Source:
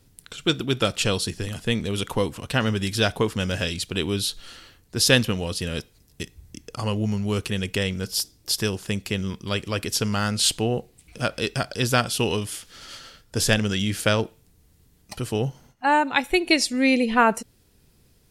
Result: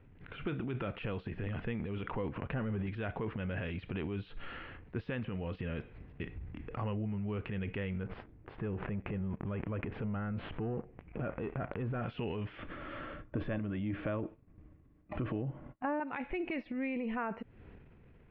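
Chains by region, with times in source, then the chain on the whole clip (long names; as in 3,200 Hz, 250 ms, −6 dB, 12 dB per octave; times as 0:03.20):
0:02.36–0:02.87: leveller curve on the samples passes 2 + de-essing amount 95%
0:08.03–0:12.02: leveller curve on the samples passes 3 + downward compressor 16 to 1, threshold −26 dBFS + head-to-tape spacing loss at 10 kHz 38 dB
0:12.58–0:16.00: downward expander −50 dBFS + bass and treble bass +4 dB, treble −10 dB + hollow resonant body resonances 310/590/1,100/3,500 Hz, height 12 dB
whole clip: transient designer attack −6 dB, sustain +9 dB; downward compressor 12 to 1, threshold −33 dBFS; Butterworth low-pass 2,500 Hz 36 dB per octave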